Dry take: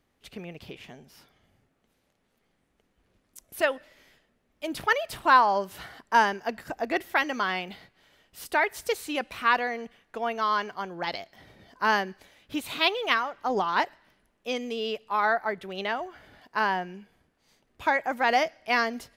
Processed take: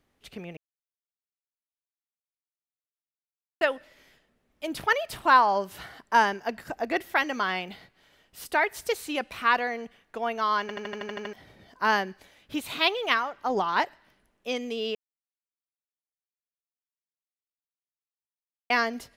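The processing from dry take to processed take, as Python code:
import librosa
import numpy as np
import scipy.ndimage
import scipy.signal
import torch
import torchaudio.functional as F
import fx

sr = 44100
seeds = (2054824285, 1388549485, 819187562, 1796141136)

y = fx.edit(x, sr, fx.silence(start_s=0.57, length_s=3.04),
    fx.stutter_over(start_s=10.61, slice_s=0.08, count=9),
    fx.silence(start_s=14.95, length_s=3.75), tone=tone)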